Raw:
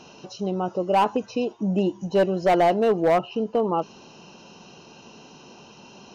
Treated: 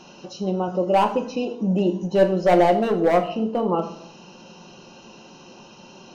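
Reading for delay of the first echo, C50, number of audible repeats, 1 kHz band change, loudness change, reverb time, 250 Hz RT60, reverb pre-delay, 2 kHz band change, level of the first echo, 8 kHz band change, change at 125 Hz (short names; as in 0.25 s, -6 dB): none, 11.5 dB, none, +1.0 dB, +2.0 dB, 0.60 s, 0.75 s, 3 ms, +1.5 dB, none, n/a, +3.0 dB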